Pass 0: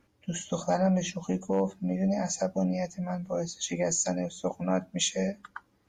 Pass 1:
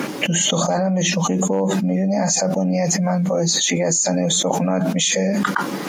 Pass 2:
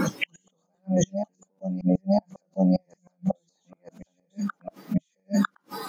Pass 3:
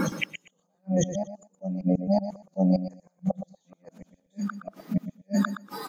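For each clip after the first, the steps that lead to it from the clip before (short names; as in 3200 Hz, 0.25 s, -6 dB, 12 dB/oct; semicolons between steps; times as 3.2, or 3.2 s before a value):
elliptic high-pass 150 Hz; fast leveller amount 100%; gain +4.5 dB
flipped gate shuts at -10 dBFS, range -38 dB; reverse echo 0.951 s -6 dB; spectral noise reduction 16 dB
feedback echo 0.119 s, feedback 16%, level -11 dB; gain -1.5 dB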